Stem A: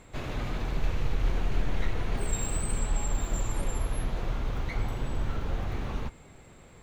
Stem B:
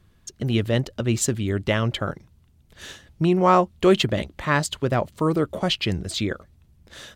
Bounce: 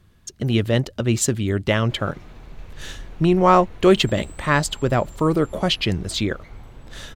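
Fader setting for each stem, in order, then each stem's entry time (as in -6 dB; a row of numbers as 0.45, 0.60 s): -10.5, +2.5 dB; 1.75, 0.00 s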